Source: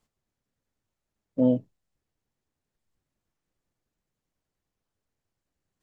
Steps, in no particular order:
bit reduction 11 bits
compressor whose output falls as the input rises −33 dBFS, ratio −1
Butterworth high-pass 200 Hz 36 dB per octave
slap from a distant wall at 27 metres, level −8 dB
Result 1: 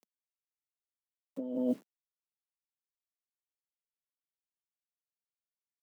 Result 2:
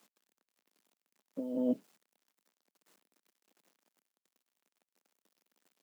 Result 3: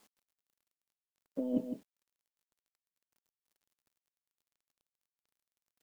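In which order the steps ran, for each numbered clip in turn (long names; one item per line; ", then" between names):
slap from a distant wall, then bit reduction, then compressor whose output falls as the input rises, then Butterworth high-pass
slap from a distant wall, then compressor whose output falls as the input rises, then bit reduction, then Butterworth high-pass
Butterworth high-pass, then compressor whose output falls as the input rises, then slap from a distant wall, then bit reduction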